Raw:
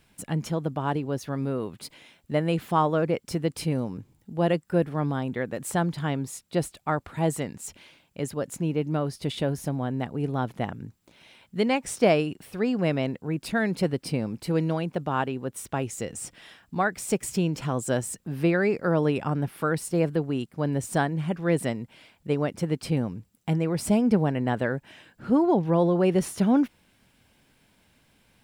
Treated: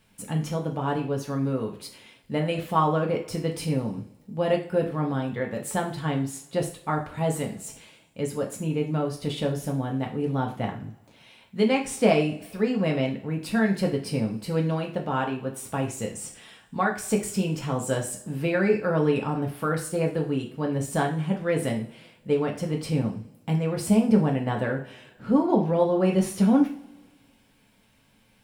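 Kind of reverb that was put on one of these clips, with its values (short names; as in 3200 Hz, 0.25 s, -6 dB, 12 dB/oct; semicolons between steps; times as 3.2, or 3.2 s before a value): two-slope reverb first 0.4 s, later 1.6 s, from -22 dB, DRR 0 dB; gain -2.5 dB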